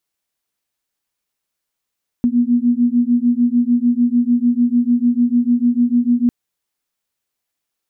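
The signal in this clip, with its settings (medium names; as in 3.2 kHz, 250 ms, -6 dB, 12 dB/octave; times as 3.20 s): beating tones 238 Hz, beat 6.7 Hz, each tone -15 dBFS 4.05 s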